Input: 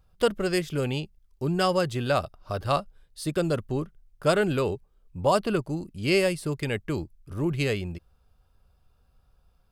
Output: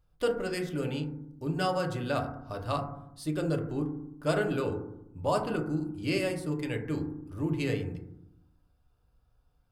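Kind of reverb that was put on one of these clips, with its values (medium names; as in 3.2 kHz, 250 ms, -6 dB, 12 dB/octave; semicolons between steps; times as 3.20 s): FDN reverb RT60 0.79 s, low-frequency decay 1.5×, high-frequency decay 0.25×, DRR 2 dB; trim -8 dB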